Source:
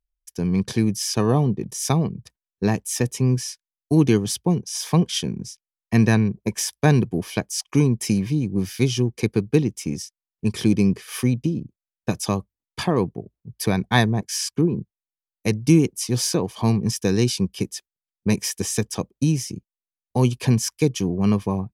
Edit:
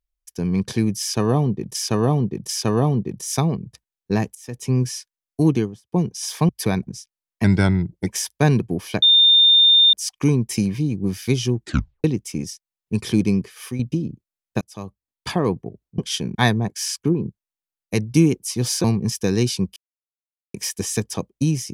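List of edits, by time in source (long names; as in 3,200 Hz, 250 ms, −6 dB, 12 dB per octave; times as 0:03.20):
0:01.01–0:01.75: repeat, 3 plays
0:02.87–0:03.22: fade in quadratic, from −19.5 dB
0:03.92–0:04.44: fade out and dull
0:05.01–0:05.38: swap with 0:13.50–0:13.88
0:05.95–0:06.50: play speed 87%
0:07.45: insert tone 3,620 Hz −9.5 dBFS 0.91 s
0:09.10: tape stop 0.46 s
0:10.76–0:11.31: fade out, to −9.5 dB
0:12.13–0:12.80: fade in
0:16.37–0:16.65: remove
0:17.57–0:18.35: silence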